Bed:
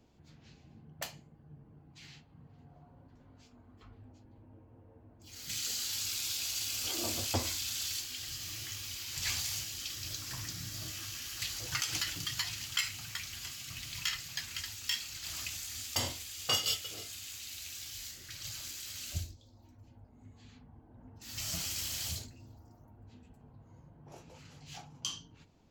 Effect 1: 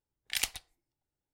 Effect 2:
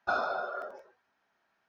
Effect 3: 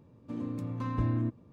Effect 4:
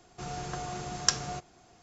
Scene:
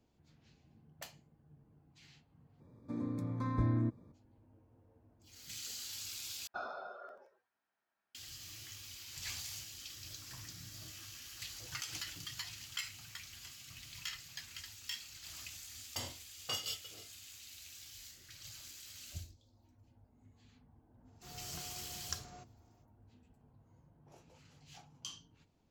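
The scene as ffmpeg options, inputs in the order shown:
ffmpeg -i bed.wav -i cue0.wav -i cue1.wav -i cue2.wav -i cue3.wav -filter_complex "[0:a]volume=-8.5dB[link_01];[3:a]asuperstop=centerf=2900:order=8:qfactor=3.4[link_02];[link_01]asplit=3[link_03][link_04][link_05];[link_03]atrim=end=2.604[link_06];[link_02]atrim=end=1.52,asetpts=PTS-STARTPTS,volume=-2.5dB[link_07];[link_04]atrim=start=4.116:end=6.474[link_08];[2:a]atrim=end=1.68,asetpts=PTS-STARTPTS,volume=-13dB[link_09];[link_05]atrim=start=8.146[link_10];[4:a]atrim=end=1.82,asetpts=PTS-STARTPTS,volume=-16.5dB,afade=type=in:duration=0.05,afade=type=out:start_time=1.77:duration=0.05,adelay=21040[link_11];[link_06][link_07]acrossfade=duration=0.004:curve1=hsin:curve2=hsin[link_12];[link_12][link_08]acrossfade=duration=0.004:curve1=hsin:curve2=hsin[link_13];[link_13][link_09]acrossfade=duration=0.004:curve1=hsin:curve2=hsin[link_14];[link_14][link_10]acrossfade=duration=0.004:curve1=hsin:curve2=hsin[link_15];[link_15][link_11]amix=inputs=2:normalize=0" out.wav

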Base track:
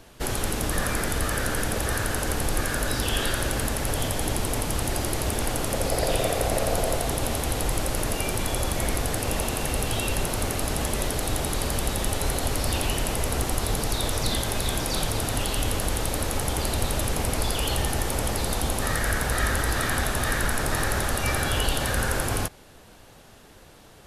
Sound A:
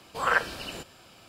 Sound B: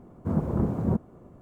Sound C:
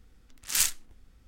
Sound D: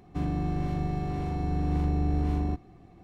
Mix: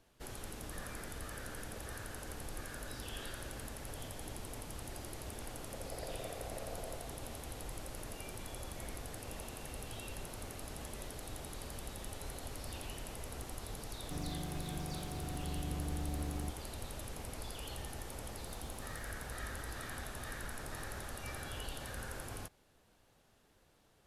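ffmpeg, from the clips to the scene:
ffmpeg -i bed.wav -i cue0.wav -i cue1.wav -i cue2.wav -i cue3.wav -filter_complex "[0:a]volume=-19dB[link_01];[4:a]aeval=exprs='val(0)*gte(abs(val(0)),0.00891)':channel_layout=same[link_02];[2:a]aderivative[link_03];[link_02]atrim=end=3.03,asetpts=PTS-STARTPTS,volume=-13dB,afade=type=in:duration=0.004:curve=hsin,afade=type=out:start_time=3.026:duration=0.004:curve=hsin,adelay=13950[link_04];[link_03]atrim=end=1.41,asetpts=PTS-STARTPTS,volume=-11dB,afade=type=in:duration=0.004:curve=hsin,afade=type=out:start_time=1.406:duration=0.004:curve=hsin,adelay=18170[link_05];[link_01][link_04][link_05]amix=inputs=3:normalize=0" out.wav

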